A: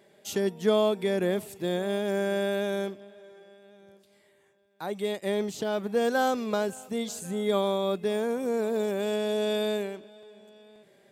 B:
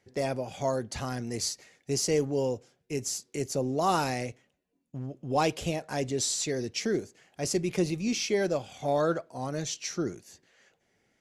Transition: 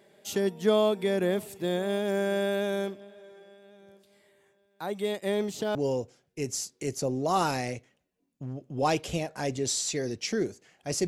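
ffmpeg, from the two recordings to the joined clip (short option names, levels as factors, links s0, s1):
-filter_complex "[0:a]apad=whole_dur=11.07,atrim=end=11.07,atrim=end=5.752[s0];[1:a]atrim=start=2.278:end=7.6[s1];[s0][s1]acrossfade=d=0.004:c1=hsin:c2=hsin"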